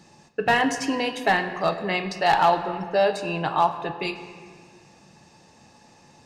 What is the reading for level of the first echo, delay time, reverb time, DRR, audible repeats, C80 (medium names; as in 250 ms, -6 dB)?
no echo, no echo, 1.9 s, 7.5 dB, no echo, 10.5 dB